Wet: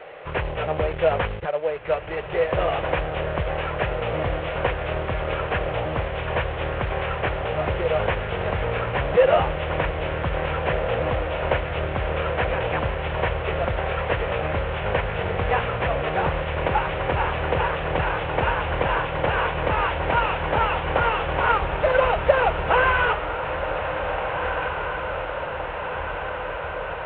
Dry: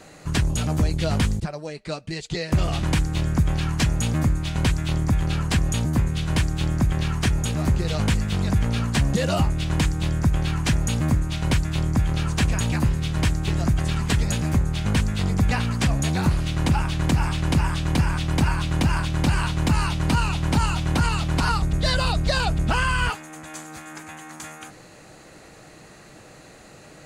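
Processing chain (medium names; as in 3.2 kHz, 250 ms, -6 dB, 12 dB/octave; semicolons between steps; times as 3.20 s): CVSD coder 16 kbps; resonant low shelf 350 Hz -11.5 dB, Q 3; echo that smears into a reverb 1804 ms, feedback 73%, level -8 dB; trim +5 dB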